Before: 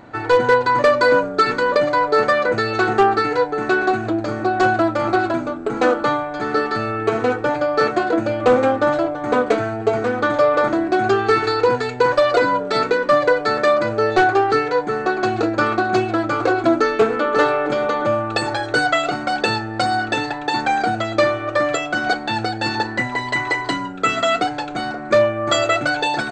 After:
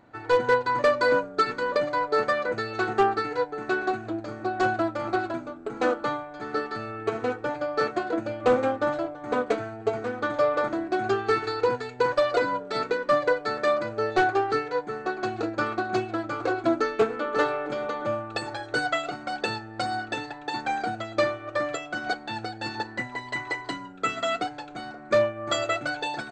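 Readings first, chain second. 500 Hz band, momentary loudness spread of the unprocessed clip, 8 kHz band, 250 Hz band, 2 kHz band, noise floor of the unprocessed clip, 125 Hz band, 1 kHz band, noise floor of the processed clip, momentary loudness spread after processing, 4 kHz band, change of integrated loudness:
-8.0 dB, 6 LU, no reading, -9.5 dB, -9.0 dB, -29 dBFS, -10.5 dB, -9.0 dB, -42 dBFS, 9 LU, -9.0 dB, -8.5 dB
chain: upward expansion 1.5:1, over -26 dBFS; trim -6 dB

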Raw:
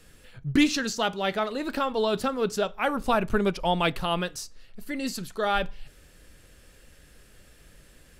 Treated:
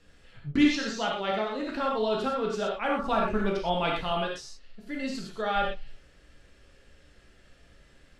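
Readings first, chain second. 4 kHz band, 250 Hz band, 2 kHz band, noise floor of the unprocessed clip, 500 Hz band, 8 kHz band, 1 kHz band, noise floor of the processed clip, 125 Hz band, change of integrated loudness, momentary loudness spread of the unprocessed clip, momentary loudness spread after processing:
-3.0 dB, -1.5 dB, -2.5 dB, -55 dBFS, -1.5 dB, -8.0 dB, -1.5 dB, -59 dBFS, -4.5 dB, -2.0 dB, 9 LU, 11 LU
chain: low-pass 5.3 kHz 12 dB/octave; gated-style reverb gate 140 ms flat, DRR -2.5 dB; trim -6.5 dB

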